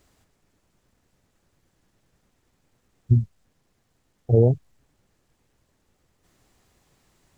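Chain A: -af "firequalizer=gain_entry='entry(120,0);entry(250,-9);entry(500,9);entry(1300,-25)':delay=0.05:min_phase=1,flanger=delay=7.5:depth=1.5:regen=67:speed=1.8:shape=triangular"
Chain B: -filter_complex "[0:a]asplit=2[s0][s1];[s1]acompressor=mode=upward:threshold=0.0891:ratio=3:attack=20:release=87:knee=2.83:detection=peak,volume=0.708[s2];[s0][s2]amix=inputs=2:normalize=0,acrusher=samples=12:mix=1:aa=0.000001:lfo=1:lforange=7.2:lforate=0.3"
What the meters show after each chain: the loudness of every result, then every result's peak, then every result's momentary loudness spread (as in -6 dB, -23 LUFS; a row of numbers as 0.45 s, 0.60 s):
-23.0 LUFS, -17.5 LUFS; -9.0 dBFS, -1.5 dBFS; 11 LU, 18 LU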